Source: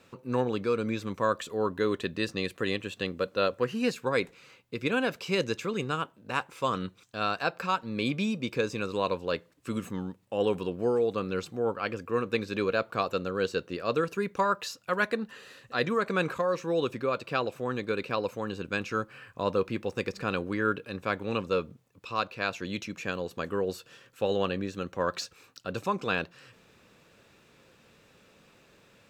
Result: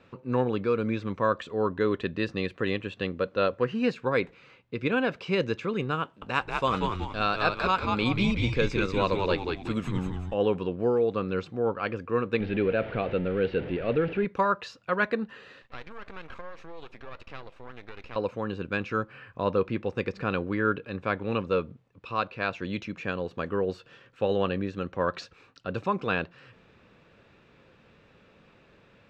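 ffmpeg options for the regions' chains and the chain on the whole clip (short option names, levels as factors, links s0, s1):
-filter_complex "[0:a]asettb=1/sr,asplit=3[s0][s1][s2];[s0]atrim=end=6.034[s3];[s1]atrim=start=6.03:end=10.34,asetpts=PTS-STARTPTS,afade=t=in:d=0.004:c=qsin,afade=t=out:st=4.306:d=0.004:c=qsin,highshelf=f=4000:g=12,asplit=6[s4][s5][s6][s7][s8][s9];[s5]adelay=186,afreqshift=-100,volume=0.631[s10];[s6]adelay=372,afreqshift=-200,volume=0.26[s11];[s7]adelay=558,afreqshift=-300,volume=0.106[s12];[s8]adelay=744,afreqshift=-400,volume=0.0437[s13];[s9]adelay=930,afreqshift=-500,volume=0.0178[s14];[s4][s10][s11][s12][s13][s14]amix=inputs=6:normalize=0,atrim=end_sample=190071[s15];[s2]atrim=start=10.336[s16];[s3][s15]acrossfade=d=0.004:c1=hsin:c2=qsin[s17];[s17][s16]acrossfade=d=0.004:c1=qsin:c2=hsin,asettb=1/sr,asplit=3[s18][s19][s20];[s18]atrim=end=12.404[s21];[s19]atrim=start=12.4:end=14.25,asetpts=PTS-STARTPTS,afade=t=in:d=0.004:c=qsin,afade=t=out:st=1.846:d=0.004:c=qsin,aeval=exprs='val(0)+0.5*0.0251*sgn(val(0))':c=same,lowpass=f=3100:w=0.5412,lowpass=f=3100:w=1.3066,equalizer=f=1100:t=o:w=0.65:g=-13[s22];[s20]atrim=start=14.246[s23];[s21][s22]acrossfade=d=0.004:c1=hsin:c2=qsin[s24];[s24][s23]acrossfade=d=0.004:c1=qsin:c2=hsin,asettb=1/sr,asplit=3[s25][s26][s27];[s25]atrim=end=15.624[s28];[s26]atrim=start=15.62:end=18.16,asetpts=PTS-STARTPTS,afade=t=in:d=0.004:c=qsin,afade=t=out:st=2.536:d=0.004:c=qsin,acompressor=threshold=0.0224:ratio=6:attack=3.2:release=140:knee=1:detection=peak,highpass=f=750:p=1,aeval=exprs='max(val(0),0)':c=same[s29];[s27]atrim=start=18.156[s30];[s28][s29]acrossfade=d=0.004:c1=hsin:c2=qsin[s31];[s31][s30]acrossfade=d=0.004:c1=qsin:c2=hsin,lowpass=3100,lowshelf=f=110:g=5,volume=1.19"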